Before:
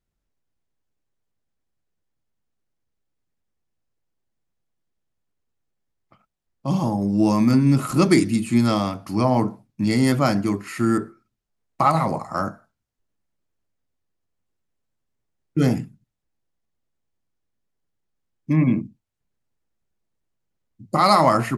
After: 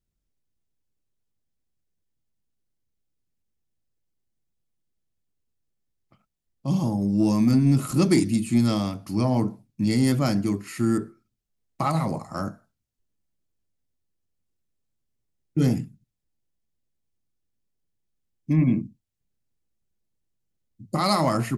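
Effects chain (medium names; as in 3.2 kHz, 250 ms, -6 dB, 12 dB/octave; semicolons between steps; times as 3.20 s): peaking EQ 1.1 kHz -8.5 dB 2.6 oct; saturation -7.5 dBFS, distortion -27 dB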